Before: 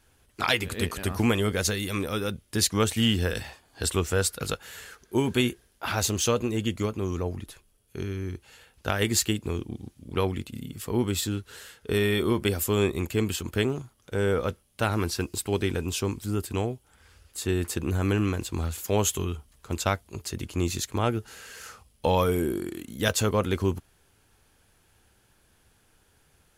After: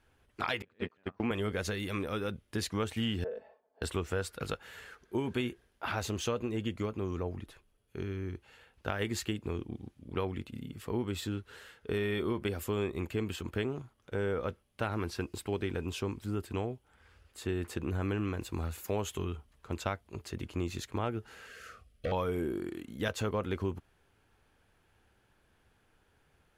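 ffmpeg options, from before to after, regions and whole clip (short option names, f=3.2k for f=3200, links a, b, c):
-filter_complex "[0:a]asettb=1/sr,asplit=3[a][b][c];[a]atrim=end=0.624[d];[b]atrim=start=0.62:end=1.31,asetpts=PTS-STARTPTS,afade=t=in:d=0.004:c=qsin,afade=t=out:st=0.686:d=0.004:c=qsin,deesser=0.6,highpass=140,lowpass=3.5k,agate=range=-27dB:threshold=-30dB:ratio=16:release=100:detection=peak[e];[c]atrim=start=1.306[f];[d][e]acrossfade=d=0.004:c1=hsin:c2=qsin[g];[g][f]acrossfade=d=0.004:c1=qsin:c2=hsin,asettb=1/sr,asplit=3[h][i][j];[h]atrim=end=3.244[k];[i]atrim=start=3.24:end=3.82,asetpts=PTS-STARTPTS,afade=t=in:d=0.004:c=qsin,afade=t=out:st=0.576:d=0.004:c=qsin,bandpass=f=540:t=q:w=4.6,aecho=1:1:4.6:0.97,atrim=end_sample=25578[l];[j]atrim=start=3.816[m];[k][l]acrossfade=d=0.004:c1=hsin:c2=qsin[n];[n][m]acrossfade=d=0.004:c1=qsin:c2=hsin,asettb=1/sr,asplit=3[o][p][q];[o]atrim=end=18.414[r];[p]atrim=start=18.41:end=19.01,asetpts=PTS-STARTPTS,afade=t=in:d=0.004:c=qsin,afade=t=out:st=0.596:d=0.004:c=qsin,highshelf=f=9.6k:g=9.5,bandreject=f=3.2k:w=12[s];[q]atrim=start=19.006[t];[r][s]acrossfade=d=0.004:c1=hsin:c2=qsin[u];[u][t]acrossfade=d=0.004:c1=qsin:c2=hsin,asettb=1/sr,asplit=3[v][w][x];[v]atrim=end=21.484[y];[w]atrim=start=21.48:end=22.12,asetpts=PTS-STARTPTS,afade=t=in:d=0.004:c=qsin,afade=t=out:st=0.636:d=0.004:c=qsin,asubboost=boost=8.5:cutoff=100,asoftclip=type=hard:threshold=-22.5dB,asuperstop=centerf=910:order=20:qfactor=2.7[z];[x]atrim=start=22.116[aa];[y][z]acrossfade=d=0.004:c1=hsin:c2=qsin[ab];[ab][aa]acrossfade=d=0.004:c1=qsin:c2=hsin,bass=f=250:g=-2,treble=f=4k:g=-12,acompressor=threshold=-27dB:ratio=2.5,volume=-3.5dB"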